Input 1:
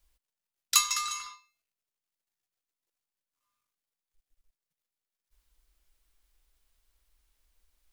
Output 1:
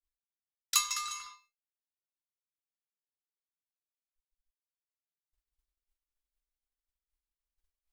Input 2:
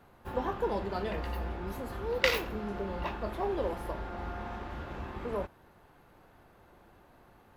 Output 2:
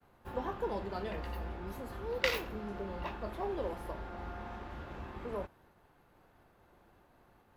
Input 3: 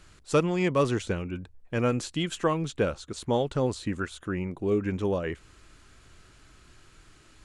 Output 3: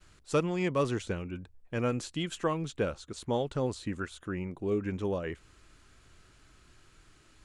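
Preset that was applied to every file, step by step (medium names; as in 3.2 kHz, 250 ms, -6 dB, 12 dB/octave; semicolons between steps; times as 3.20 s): expander -57 dBFS; trim -4.5 dB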